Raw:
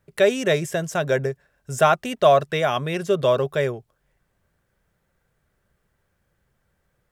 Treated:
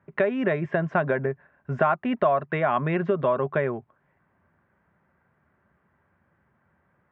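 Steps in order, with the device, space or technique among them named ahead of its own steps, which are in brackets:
bass amplifier (downward compressor 6 to 1, threshold −24 dBFS, peak gain reduction 12.5 dB; loudspeaker in its box 82–2,100 Hz, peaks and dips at 120 Hz −7 dB, 240 Hz +3 dB, 480 Hz −7 dB, 1,000 Hz +5 dB)
level +5.5 dB

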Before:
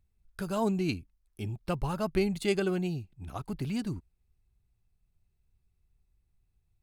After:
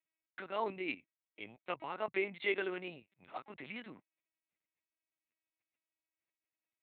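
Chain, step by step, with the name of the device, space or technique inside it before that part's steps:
talking toy (linear-prediction vocoder at 8 kHz pitch kept; high-pass filter 460 Hz 12 dB per octave; parametric band 2,100 Hz +11 dB 0.5 octaves)
level −3 dB

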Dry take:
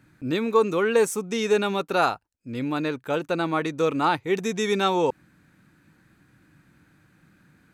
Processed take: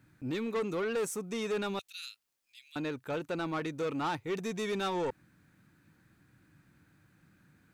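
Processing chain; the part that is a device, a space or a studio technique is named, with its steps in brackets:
0:01.79–0:02.76: inverse Chebyshev high-pass filter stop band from 860 Hz, stop band 60 dB
open-reel tape (soft clipping −21 dBFS, distortion −11 dB; parametric band 100 Hz +4 dB 0.86 octaves; white noise bed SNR 47 dB)
level −7 dB

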